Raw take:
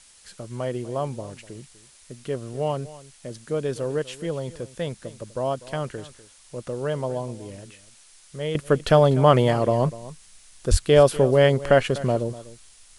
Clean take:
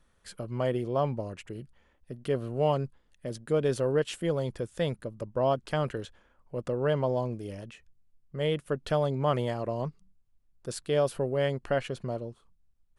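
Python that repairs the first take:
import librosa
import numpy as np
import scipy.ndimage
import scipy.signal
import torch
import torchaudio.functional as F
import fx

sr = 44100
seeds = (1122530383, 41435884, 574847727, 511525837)

y = fx.fix_deplosive(x, sr, at_s=(10.7,))
y = fx.noise_reduce(y, sr, print_start_s=7.83, print_end_s=8.33, reduce_db=13.0)
y = fx.fix_echo_inverse(y, sr, delay_ms=247, level_db=-17.5)
y = fx.gain(y, sr, db=fx.steps((0.0, 0.0), (8.55, -11.0)))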